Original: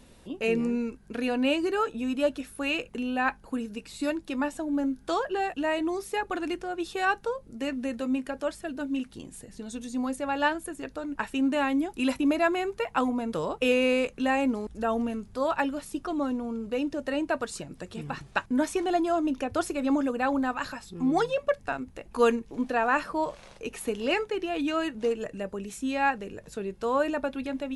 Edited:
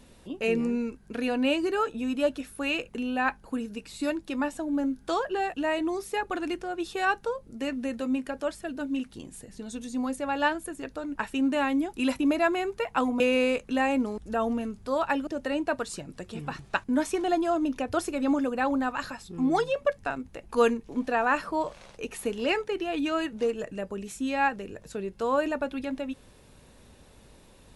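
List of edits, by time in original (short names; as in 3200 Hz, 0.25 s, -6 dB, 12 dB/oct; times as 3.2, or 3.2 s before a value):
13.2–13.69 cut
15.76–16.89 cut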